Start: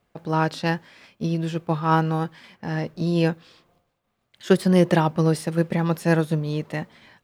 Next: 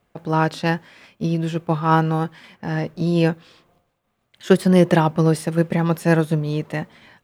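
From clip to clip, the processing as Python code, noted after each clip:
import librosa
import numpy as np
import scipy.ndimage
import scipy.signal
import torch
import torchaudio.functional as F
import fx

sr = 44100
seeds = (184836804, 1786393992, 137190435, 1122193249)

y = fx.peak_eq(x, sr, hz=4700.0, db=-3.0, octaves=0.69)
y = F.gain(torch.from_numpy(y), 3.0).numpy()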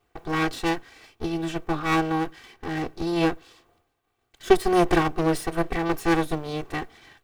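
y = fx.lower_of_two(x, sr, delay_ms=2.6)
y = F.gain(torch.from_numpy(y), -1.0).numpy()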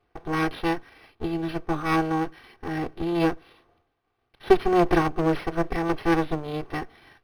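y = np.interp(np.arange(len(x)), np.arange(len(x))[::6], x[::6])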